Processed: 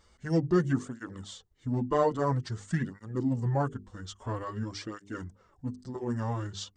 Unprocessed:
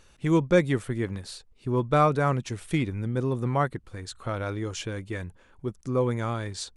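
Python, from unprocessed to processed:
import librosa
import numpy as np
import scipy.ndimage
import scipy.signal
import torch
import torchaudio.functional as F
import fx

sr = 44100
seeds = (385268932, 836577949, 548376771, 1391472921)

y = fx.formant_shift(x, sr, semitones=-4)
y = fx.peak_eq(y, sr, hz=2500.0, db=-13.5, octaves=0.29)
y = fx.hum_notches(y, sr, base_hz=50, count=9)
y = fx.flanger_cancel(y, sr, hz=0.5, depth_ms=7.9)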